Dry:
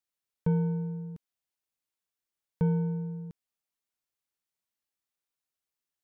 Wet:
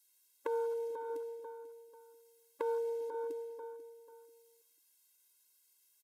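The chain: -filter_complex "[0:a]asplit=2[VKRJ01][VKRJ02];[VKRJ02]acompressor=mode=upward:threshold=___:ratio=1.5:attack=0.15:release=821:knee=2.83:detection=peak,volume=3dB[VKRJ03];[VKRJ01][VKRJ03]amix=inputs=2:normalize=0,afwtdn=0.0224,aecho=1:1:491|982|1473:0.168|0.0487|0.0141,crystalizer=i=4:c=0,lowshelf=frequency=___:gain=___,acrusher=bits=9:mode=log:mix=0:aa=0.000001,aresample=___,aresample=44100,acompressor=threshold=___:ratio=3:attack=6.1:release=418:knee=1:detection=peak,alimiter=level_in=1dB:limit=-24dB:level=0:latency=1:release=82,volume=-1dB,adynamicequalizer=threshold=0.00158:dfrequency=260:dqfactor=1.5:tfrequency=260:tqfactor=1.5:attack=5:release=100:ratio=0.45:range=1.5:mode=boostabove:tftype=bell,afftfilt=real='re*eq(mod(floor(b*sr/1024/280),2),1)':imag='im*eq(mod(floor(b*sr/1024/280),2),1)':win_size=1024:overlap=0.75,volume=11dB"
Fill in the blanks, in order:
-50dB, 360, -6.5, 32000, -39dB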